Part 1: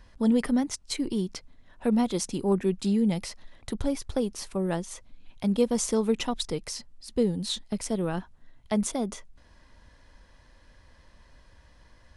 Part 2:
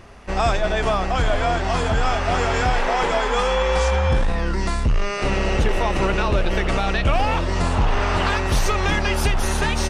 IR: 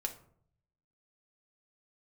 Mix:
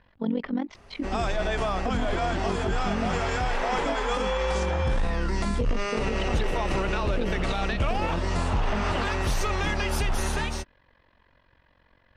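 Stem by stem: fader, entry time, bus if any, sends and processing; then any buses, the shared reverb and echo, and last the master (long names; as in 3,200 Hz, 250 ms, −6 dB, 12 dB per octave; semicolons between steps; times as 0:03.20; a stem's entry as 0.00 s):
+2.5 dB, 0.00 s, no send, low-pass filter 3,400 Hz 24 dB per octave; amplitude modulation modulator 45 Hz, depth 75%; low-shelf EQ 120 Hz −11 dB
−5.5 dB, 0.75 s, no send, automatic gain control; automatic ducking −7 dB, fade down 1.75 s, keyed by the first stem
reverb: not used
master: brickwall limiter −17.5 dBFS, peak gain reduction 9 dB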